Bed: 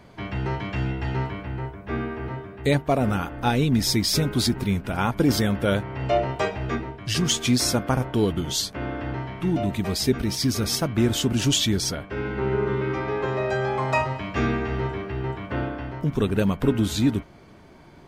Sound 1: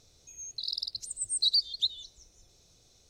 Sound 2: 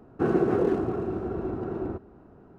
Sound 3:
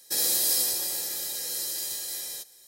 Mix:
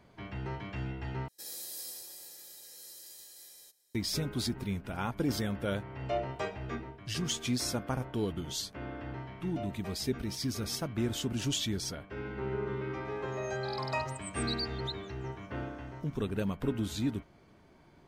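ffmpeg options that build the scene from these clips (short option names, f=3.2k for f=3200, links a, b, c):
-filter_complex "[0:a]volume=-11dB[a];[1:a]equalizer=f=12k:w=1.5:g=3.5[b];[a]asplit=2[c][d];[c]atrim=end=1.284[e];[3:a]atrim=end=2.67,asetpts=PTS-STARTPTS,volume=-18dB[f];[d]atrim=start=3.946[g];[b]atrim=end=3.09,asetpts=PTS-STARTPTS,volume=-12dB,afade=t=in:d=0.004:c=hsin,afade=t=out:st=3.086:d=0.004:c=hsin,adelay=13050[h];[e][f]acrossfade=d=0.004:c1=hsin:c2=hsin[i];[i][g]acrossfade=d=0.004:c1=hsin:c2=hsin[j];[j][h]amix=inputs=2:normalize=0"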